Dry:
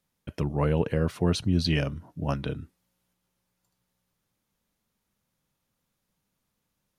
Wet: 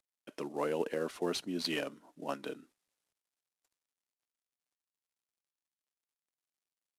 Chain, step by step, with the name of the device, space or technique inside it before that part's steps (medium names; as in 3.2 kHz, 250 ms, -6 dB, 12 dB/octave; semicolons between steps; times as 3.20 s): early wireless headset (high-pass 270 Hz 24 dB/octave; CVSD coder 64 kbps); trim -5 dB